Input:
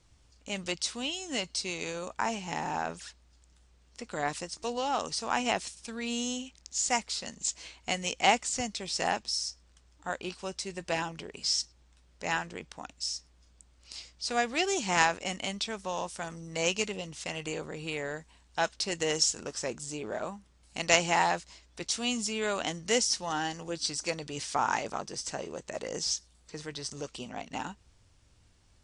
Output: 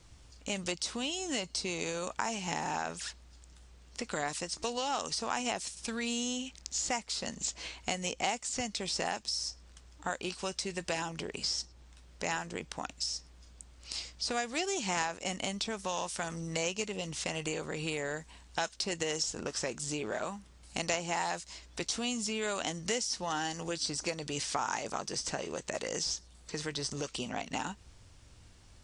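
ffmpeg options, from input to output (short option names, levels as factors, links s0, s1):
-filter_complex "[0:a]acrossover=split=1300|5100[s0][s1][s2];[s0]acompressor=threshold=0.00794:ratio=4[s3];[s1]acompressor=threshold=0.00501:ratio=4[s4];[s2]acompressor=threshold=0.00501:ratio=4[s5];[s3][s4][s5]amix=inputs=3:normalize=0,volume=2.11"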